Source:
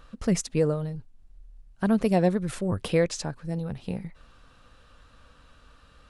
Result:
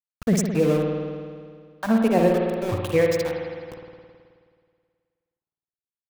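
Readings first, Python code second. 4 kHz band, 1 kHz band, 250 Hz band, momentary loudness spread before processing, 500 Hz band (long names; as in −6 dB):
+1.0 dB, +5.0 dB, +3.5 dB, 13 LU, +5.5 dB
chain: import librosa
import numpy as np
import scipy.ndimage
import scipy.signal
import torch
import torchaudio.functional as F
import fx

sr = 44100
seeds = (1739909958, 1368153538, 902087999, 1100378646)

y = fx.noise_reduce_blind(x, sr, reduce_db=29)
y = np.where(np.abs(y) >= 10.0 ** (-33.0 / 20.0), y, 0.0)
y = fx.rev_spring(y, sr, rt60_s=2.0, pass_ms=(53,), chirp_ms=30, drr_db=0.5)
y = y * 10.0 ** (3.0 / 20.0)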